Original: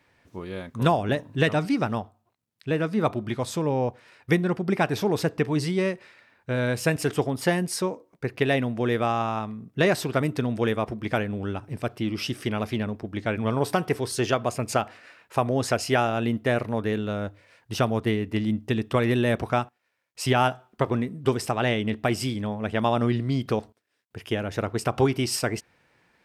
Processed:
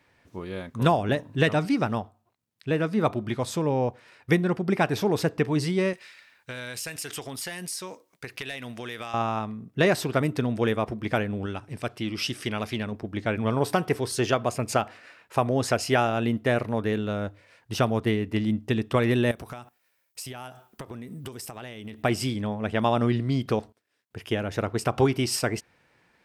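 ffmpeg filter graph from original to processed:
-filter_complex "[0:a]asettb=1/sr,asplit=3[a][b][c];[a]atrim=end=5.934[d];[b]atrim=start=5.93:end=9.14,asetpts=PTS-STARTPTS,afade=t=in:d=0.004:c=qsin,afade=t=out:st=3.206:d=0.004:c=qsin,tiltshelf=f=1.4k:g=-9.5,aeval=exprs='clip(val(0),-1,0.188)':c=same,acompressor=threshold=-31dB:ratio=6:attack=3.2:release=140:knee=1:detection=peak[e];[c]atrim=start=9.136[f];[d][e]acrossfade=d=0.004:c1=hsin:c2=qsin[g];[g][f]acrossfade=d=0.004:c1=qsin:c2=hsin,asettb=1/sr,asplit=3[h][i][j];[h]atrim=end=11.464[k];[i]atrim=start=11.46:end=12.92,asetpts=PTS-STARTPTS,afade=t=in:d=0.004:c=qsin,afade=t=out:st=1.456:d=0.004:c=qsin,lowpass=12k,tiltshelf=f=1.4k:g=-3.5[l];[j]atrim=start=12.916[m];[k][l]acrossfade=d=0.004:c1=hsin:c2=qsin[n];[n][m]acrossfade=d=0.004:c1=qsin:c2=hsin,asettb=1/sr,asplit=3[o][p][q];[o]atrim=end=19.314[r];[p]atrim=start=19.31:end=22.03,asetpts=PTS-STARTPTS,afade=t=in:d=0.004:c=qsin,afade=t=out:st=2.716:d=0.004:c=qsin,aemphasis=mode=production:type=50fm,acompressor=threshold=-34dB:ratio=16:attack=3.2:release=140:knee=1:detection=peak[s];[q]atrim=start=22.026[t];[r][s]acrossfade=d=0.004:c1=hsin:c2=qsin[u];[u][t]acrossfade=d=0.004:c1=qsin:c2=hsin"

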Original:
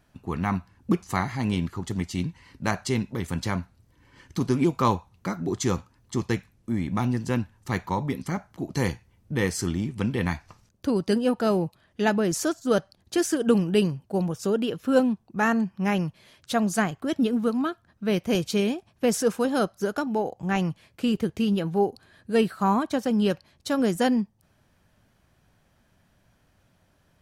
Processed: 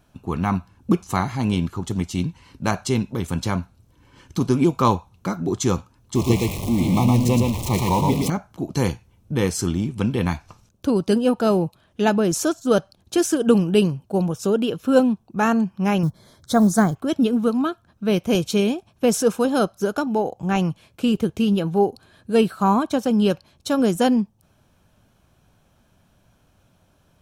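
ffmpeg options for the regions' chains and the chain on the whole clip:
-filter_complex "[0:a]asettb=1/sr,asplit=3[a][b][c];[a]atrim=end=6.154[d];[b]atrim=start=6.15:end=8.3,asetpts=PTS-STARTPTS,afade=t=in:d=0.004:c=qsin,afade=t=out:st=2.146:d=0.004:c=qsin,aeval=exprs='val(0)+0.5*0.0398*sgn(val(0))':c=same,asuperstop=centerf=1500:order=8:qfactor=2,aecho=1:1:115:0.708,atrim=end_sample=94815[e];[c]atrim=start=8.296[f];[d][e]acrossfade=d=0.004:c1=hsin:c2=qsin[g];[g][f]acrossfade=d=0.004:c1=qsin:c2=hsin,asettb=1/sr,asplit=3[h][i][j];[h]atrim=end=16.034[k];[i]atrim=start=16.03:end=16.96,asetpts=PTS-STARTPTS,afade=t=in:d=0.004:c=qsin,afade=t=out:st=0.926:d=0.004:c=qsin,lowshelf=f=280:g=7,acrusher=bits=8:mode=log:mix=0:aa=0.000001,asuperstop=centerf=2700:order=4:qfactor=1.8[l];[j]atrim=start=16.956[m];[k][l]acrossfade=d=0.004:c1=hsin:c2=qsin[n];[n][m]acrossfade=d=0.004:c1=qsin:c2=hsin,equalizer=f=1.9k:w=5:g=-10.5,bandreject=f=4.7k:w=14,volume=4.5dB"

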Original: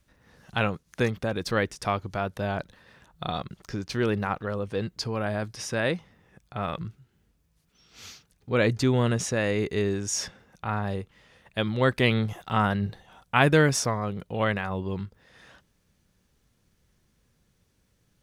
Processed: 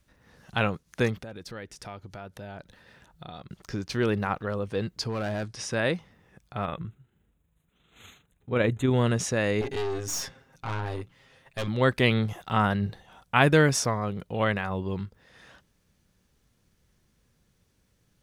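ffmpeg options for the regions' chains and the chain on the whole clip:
-filter_complex "[0:a]asettb=1/sr,asplit=3[a][b][c];[a]atrim=end=1.224[d];[b]atrim=start=1.22:end=3.51,asetpts=PTS-STARTPTS,afade=t=in:d=0.004:c=qsin,afade=t=out:st=2.286:d=0.004:c=qsin,bandreject=f=1.1k:w=10,acompressor=threshold=-43dB:ratio=2.5:attack=3.2:release=140:knee=1:detection=peak[e];[c]atrim=start=3.506[f];[d][e]acrossfade=d=0.004:c1=hsin:c2=qsin[g];[g][f]acrossfade=d=0.004:c1=qsin:c2=hsin,asettb=1/sr,asplit=3[h][i][j];[h]atrim=end=5.094[k];[i]atrim=start=5.09:end=5.71,asetpts=PTS-STARTPTS,afade=t=in:d=0.004:c=qsin,afade=t=out:st=0.616:d=0.004:c=qsin,lowpass=f=10k:w=0.5412,lowpass=f=10k:w=1.3066,asoftclip=type=hard:threshold=-26dB[l];[j]atrim=start=5.706[m];[k][l]acrossfade=d=0.004:c1=hsin:c2=qsin[n];[n][m]acrossfade=d=0.004:c1=qsin:c2=hsin,asettb=1/sr,asplit=3[o][p][q];[o]atrim=end=6.654[r];[p]atrim=start=6.65:end=8.91,asetpts=PTS-STARTPTS,afade=t=in:d=0.004:c=qsin,afade=t=out:st=2.256:d=0.004:c=qsin,equalizer=f=8.5k:t=o:w=2.8:g=-4.5,tremolo=f=25:d=0.333,asuperstop=centerf=5100:order=12:qfactor=2.1[s];[q]atrim=start=8.906[t];[r][s]acrossfade=d=0.004:c1=hsin:c2=qsin[u];[u][t]acrossfade=d=0.004:c1=qsin:c2=hsin,asettb=1/sr,asplit=3[v][w][x];[v]atrim=end=9.614[y];[w]atrim=start=9.61:end=11.68,asetpts=PTS-STARTPTS,afade=t=in:d=0.004:c=qsin,afade=t=out:st=2.066:d=0.004:c=qsin,bandreject=f=60:t=h:w=6,bandreject=f=120:t=h:w=6,bandreject=f=180:t=h:w=6,bandreject=f=240:t=h:w=6,bandreject=f=300:t=h:w=6,aecho=1:1:7.5:0.88,atrim=end_sample=91287,aeval=exprs='(tanh(22.4*val(0)+0.6)-tanh(0.6))/22.4':c=same[z];[x]atrim=start=11.676[aa];[y][z]acrossfade=d=0.004:c1=hsin:c2=qsin[ab];[ab][aa]acrossfade=d=0.004:c1=qsin:c2=hsin"

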